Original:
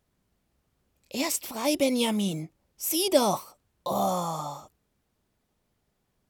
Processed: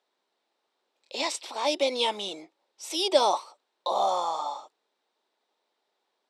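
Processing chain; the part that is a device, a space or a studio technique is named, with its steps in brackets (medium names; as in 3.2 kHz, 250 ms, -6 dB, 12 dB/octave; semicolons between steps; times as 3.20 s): phone speaker on a table (cabinet simulation 370–7500 Hz, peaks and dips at 890 Hz +6 dB, 3.8 kHz +8 dB, 6.7 kHz -6 dB)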